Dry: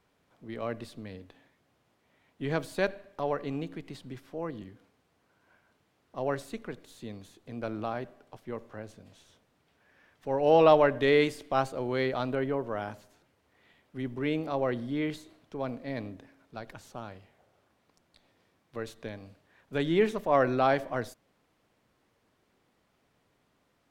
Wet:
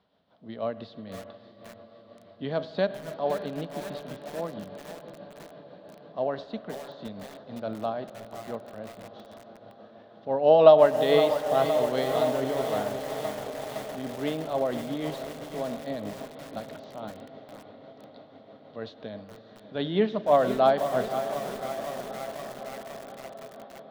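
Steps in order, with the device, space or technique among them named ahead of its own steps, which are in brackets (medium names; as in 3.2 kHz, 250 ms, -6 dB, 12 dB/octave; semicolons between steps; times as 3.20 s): distance through air 79 m; resonant high shelf 3 kHz +9 dB, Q 1.5; echo that smears into a reverb 585 ms, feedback 74%, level -13 dB; combo amplifier with spring reverb and tremolo (spring tank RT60 3.6 s, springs 45/53 ms, chirp 55 ms, DRR 15 dB; tremolo 6.1 Hz, depth 39%; cabinet simulation 79–3700 Hz, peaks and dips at 130 Hz -5 dB, 200 Hz +6 dB, 350 Hz -5 dB, 640 Hz +9 dB, 2.4 kHz -6 dB); bit-crushed delay 515 ms, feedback 80%, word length 6-bit, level -10.5 dB; trim +1.5 dB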